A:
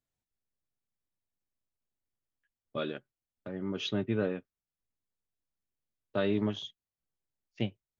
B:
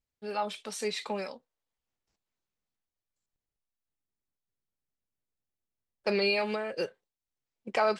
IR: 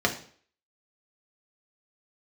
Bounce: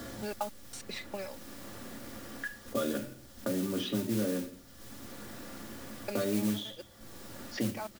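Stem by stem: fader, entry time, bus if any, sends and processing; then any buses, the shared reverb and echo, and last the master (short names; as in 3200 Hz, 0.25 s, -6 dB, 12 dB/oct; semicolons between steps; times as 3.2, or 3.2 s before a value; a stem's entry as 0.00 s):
-15.0 dB, 0.00 s, send -6.5 dB, low shelf 240 Hz +8.5 dB; fast leveller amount 70%
-1.0 dB, 0.00 s, no send, step gate "x.xx.x...x.xx.xx" 185 bpm -60 dB; auto duck -15 dB, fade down 1.50 s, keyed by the first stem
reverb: on, RT60 0.50 s, pre-delay 3 ms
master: comb 3.5 ms, depth 44%; modulation noise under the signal 13 dB; three-band squash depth 70%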